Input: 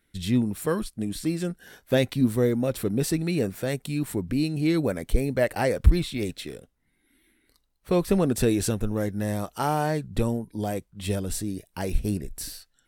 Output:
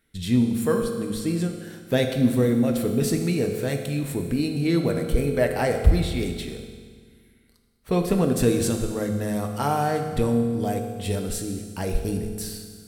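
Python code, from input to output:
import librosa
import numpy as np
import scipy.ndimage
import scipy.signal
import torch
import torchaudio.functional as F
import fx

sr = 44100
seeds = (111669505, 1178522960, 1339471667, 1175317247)

y = fx.rev_fdn(x, sr, rt60_s=1.7, lf_ratio=1.25, hf_ratio=1.0, size_ms=13.0, drr_db=3.5)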